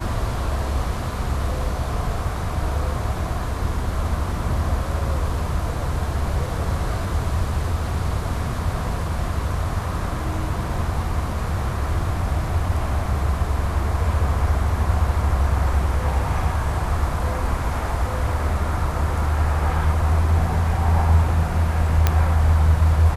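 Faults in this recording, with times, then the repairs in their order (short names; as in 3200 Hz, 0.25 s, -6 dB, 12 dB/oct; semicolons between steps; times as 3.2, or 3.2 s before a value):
22.07 pop -3 dBFS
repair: de-click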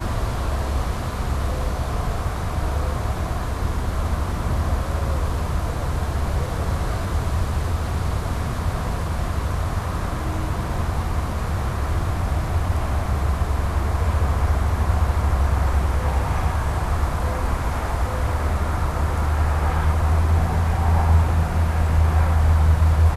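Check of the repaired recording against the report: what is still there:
none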